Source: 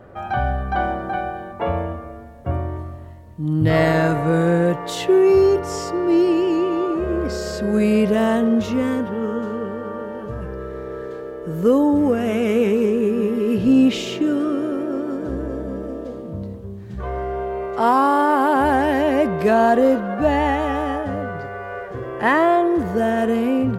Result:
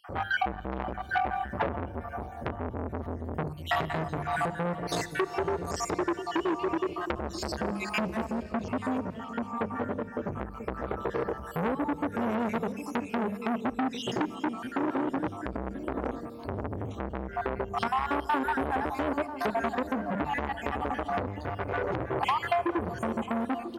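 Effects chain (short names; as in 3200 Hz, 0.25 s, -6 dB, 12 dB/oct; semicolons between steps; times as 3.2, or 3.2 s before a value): random spectral dropouts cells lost 60%; HPF 43 Hz 24 dB/oct; low shelf 210 Hz +10.5 dB; notches 50/100/150/200 Hz; compressor 12:1, threshold -28 dBFS, peak gain reduction 20.5 dB; 8.24–10.32 rotary speaker horn 1.2 Hz; outdoor echo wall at 170 m, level -14 dB; reverb RT60 4.5 s, pre-delay 38 ms, DRR 16.5 dB; core saturation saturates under 1900 Hz; gain +6 dB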